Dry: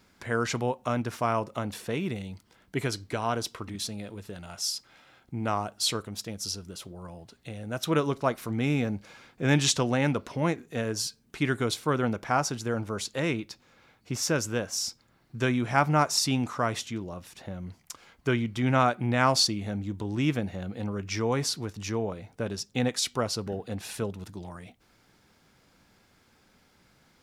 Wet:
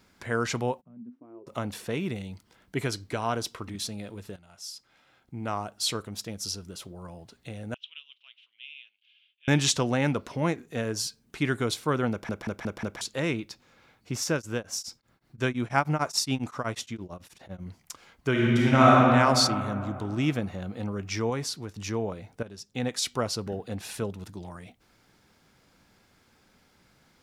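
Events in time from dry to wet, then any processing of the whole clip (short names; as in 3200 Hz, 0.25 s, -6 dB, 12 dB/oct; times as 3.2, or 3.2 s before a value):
0.8–1.46 band-pass 160 Hz -> 400 Hz, Q 17
4.36–6.14 fade in, from -15 dB
7.74–9.48 Butterworth band-pass 3000 Hz, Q 4.4
12.11 stutter in place 0.18 s, 5 plays
14.23–17.64 beating tremolo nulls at 4.4 Hz -> 11 Hz
18.3–18.98 reverb throw, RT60 2.7 s, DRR -5.5 dB
21.3–21.76 gain -3.5 dB
22.43–23.08 fade in, from -14.5 dB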